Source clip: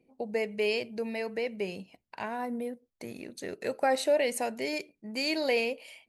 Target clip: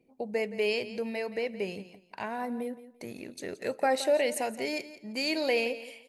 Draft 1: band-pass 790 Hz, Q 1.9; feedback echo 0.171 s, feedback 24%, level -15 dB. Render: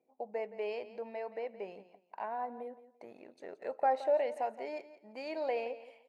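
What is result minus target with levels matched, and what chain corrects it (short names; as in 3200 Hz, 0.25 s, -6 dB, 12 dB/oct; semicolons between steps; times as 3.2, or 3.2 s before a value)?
1000 Hz band +5.5 dB
feedback echo 0.171 s, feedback 24%, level -15 dB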